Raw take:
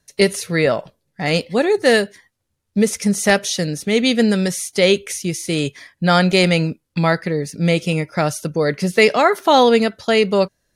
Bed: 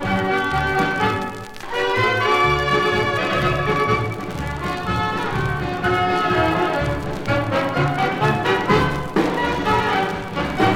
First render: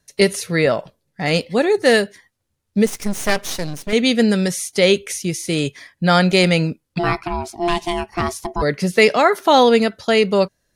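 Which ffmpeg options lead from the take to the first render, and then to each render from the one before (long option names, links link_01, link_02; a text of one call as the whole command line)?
ffmpeg -i in.wav -filter_complex "[0:a]asettb=1/sr,asplit=3[link_01][link_02][link_03];[link_01]atrim=end=2.864[link_04];[link_02]atrim=start=2.86:end=3.93,asetpts=PTS-STARTPTS,afade=type=in:duration=0.004:curve=qsin,afade=type=out:start_time=1.066:duration=0.004:curve=qsin,aeval=exprs='max(val(0),0)':channel_layout=same[link_05];[link_03]atrim=start=3.926[link_06];[link_04][link_05]acrossfade=duration=0.004:curve1=hsin:curve2=qsin[link_07];[link_07][link_06]acrossfade=duration=0.004:curve1=qsin:curve2=hsin,asplit=3[link_08][link_09][link_10];[link_08]afade=type=out:start_time=6.98:duration=0.02[link_11];[link_09]aeval=exprs='val(0)*sin(2*PI*520*n/s)':channel_layout=same,afade=type=in:start_time=6.98:duration=0.02,afade=type=out:start_time=8.61:duration=0.02[link_12];[link_10]afade=type=in:start_time=8.61:duration=0.02[link_13];[link_11][link_12][link_13]amix=inputs=3:normalize=0" out.wav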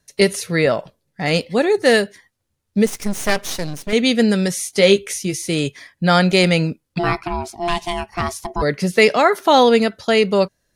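ffmpeg -i in.wav -filter_complex "[0:a]asettb=1/sr,asplit=3[link_01][link_02][link_03];[link_01]atrim=end=4.554[link_04];[link_02]atrim=start=4.55:end=5.48,asetpts=PTS-STARTPTS,afade=type=in:duration=0.004:curve=qsin,afade=type=out:start_time=0.926:duration=0.004:curve=qsin,asplit=2[link_05][link_06];[link_06]adelay=15,volume=-8dB[link_07];[link_05][link_07]amix=inputs=2:normalize=0,atrim=end_sample=41013[link_08];[link_03]atrim=start=5.476[link_09];[link_04][link_08]acrossfade=duration=0.004:curve1=hsin:curve2=qsin[link_10];[link_10][link_09]acrossfade=duration=0.004:curve1=qsin:curve2=hsin,asettb=1/sr,asplit=3[link_11][link_12][link_13];[link_11]atrim=end=7.544[link_14];[link_12]atrim=start=7.54:end=8.5,asetpts=PTS-STARTPTS,afade=type=in:duration=0.004:curve=qsin,afade=type=out:start_time=0.956:duration=0.004:curve=qsin,equalizer=frequency=330:width_type=o:width=0.77:gain=-7[link_15];[link_13]atrim=start=8.496[link_16];[link_14][link_15]acrossfade=duration=0.004:curve1=hsin:curve2=qsin[link_17];[link_17][link_16]acrossfade=duration=0.004:curve1=qsin:curve2=hsin" out.wav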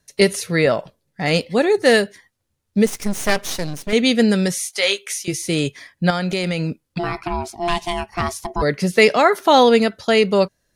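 ffmpeg -i in.wav -filter_complex "[0:a]asettb=1/sr,asplit=3[link_01][link_02][link_03];[link_01]atrim=end=4.584[link_04];[link_02]atrim=start=4.58:end=5.28,asetpts=PTS-STARTPTS,afade=type=in:duration=0.004:curve=qsin,afade=type=out:start_time=0.696:duration=0.004:curve=qsin,highpass=860[link_05];[link_03]atrim=start=5.276[link_06];[link_04][link_05]acrossfade=duration=0.004:curve1=hsin:curve2=qsin[link_07];[link_07][link_06]acrossfade=duration=0.004:curve1=qsin:curve2=hsin,asettb=1/sr,asplit=3[link_08][link_09][link_10];[link_08]atrim=end=6.104[link_11];[link_09]atrim=start=6.1:end=7.24,asetpts=PTS-STARTPTS,afade=type=in:duration=0.004:curve=qsin,afade=type=out:start_time=1.136:duration=0.004:curve=qsin,acompressor=threshold=-18dB:ratio=6:attack=3.2:release=140:knee=1:detection=peak[link_12];[link_10]atrim=start=7.236[link_13];[link_11][link_12]acrossfade=duration=0.004:curve1=hsin:curve2=qsin[link_14];[link_14][link_13]acrossfade=duration=0.004:curve1=qsin:curve2=hsin" out.wav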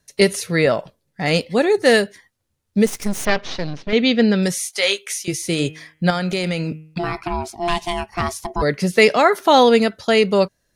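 ffmpeg -i in.wav -filter_complex "[0:a]asettb=1/sr,asplit=3[link_01][link_02][link_03];[link_01]atrim=end=3.254[link_04];[link_02]atrim=start=3.25:end=4.43,asetpts=PTS-STARTPTS,afade=type=in:duration=0.004:curve=qsin,afade=type=out:start_time=1.176:duration=0.004:curve=qsin,lowpass=frequency=4700:width=0.5412,lowpass=frequency=4700:width=1.3066[link_05];[link_03]atrim=start=4.426[link_06];[link_04][link_05]acrossfade=duration=0.004:curve1=hsin:curve2=qsin[link_07];[link_07][link_06]acrossfade=duration=0.004:curve1=qsin:curve2=hsin,asettb=1/sr,asplit=3[link_08][link_09][link_10];[link_08]atrim=end=5.534[link_11];[link_09]atrim=start=5.53:end=7.1,asetpts=PTS-STARTPTS,afade=type=in:duration=0.004:curve=qsin,afade=type=out:start_time=1.566:duration=0.004:curve=qsin,bandreject=frequency=156.4:width_type=h:width=4,bandreject=frequency=312.8:width_type=h:width=4,bandreject=frequency=469.2:width_type=h:width=4,bandreject=frequency=625.6:width_type=h:width=4,bandreject=frequency=782:width_type=h:width=4,bandreject=frequency=938.4:width_type=h:width=4,bandreject=frequency=1094.8:width_type=h:width=4,bandreject=frequency=1251.2:width_type=h:width=4,bandreject=frequency=1407.6:width_type=h:width=4,bandreject=frequency=1564:width_type=h:width=4,bandreject=frequency=1720.4:width_type=h:width=4,bandreject=frequency=1876.8:width_type=h:width=4,bandreject=frequency=2033.2:width_type=h:width=4,bandreject=frequency=2189.6:width_type=h:width=4,bandreject=frequency=2346:width_type=h:width=4,bandreject=frequency=2502.4:width_type=h:width=4,bandreject=frequency=2658.8:width_type=h:width=4,bandreject=frequency=2815.2:width_type=h:width=4,bandreject=frequency=2971.6:width_type=h:width=4,bandreject=frequency=3128:width_type=h:width=4,bandreject=frequency=3284.4:width_type=h:width=4[link_12];[link_10]atrim=start=7.096[link_13];[link_11][link_12]acrossfade=duration=0.004:curve1=hsin:curve2=qsin[link_14];[link_14][link_13]acrossfade=duration=0.004:curve1=qsin:curve2=hsin" out.wav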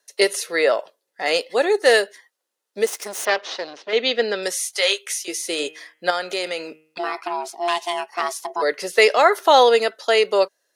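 ffmpeg -i in.wav -af "highpass=frequency=400:width=0.5412,highpass=frequency=400:width=1.3066,bandreject=frequency=2300:width=14" out.wav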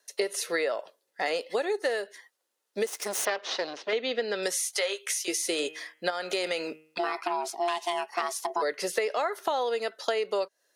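ffmpeg -i in.wav -filter_complex "[0:a]acrossover=split=1800[link_01][link_02];[link_02]alimiter=limit=-16.5dB:level=0:latency=1:release=162[link_03];[link_01][link_03]amix=inputs=2:normalize=0,acompressor=threshold=-25dB:ratio=12" out.wav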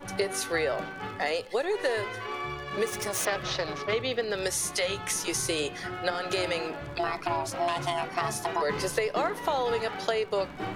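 ffmpeg -i in.wav -i bed.wav -filter_complex "[1:a]volume=-18dB[link_01];[0:a][link_01]amix=inputs=2:normalize=0" out.wav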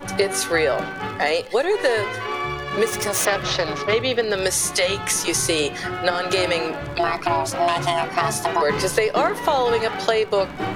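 ffmpeg -i in.wav -af "volume=8.5dB" out.wav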